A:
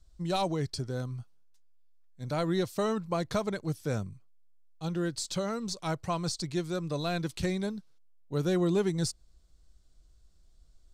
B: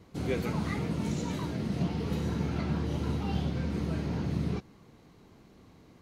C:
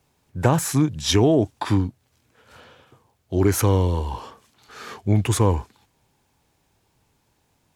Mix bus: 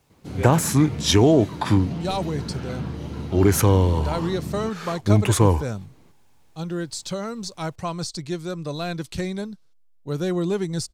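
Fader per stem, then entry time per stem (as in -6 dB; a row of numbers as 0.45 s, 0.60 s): +3.0 dB, -0.5 dB, +1.5 dB; 1.75 s, 0.10 s, 0.00 s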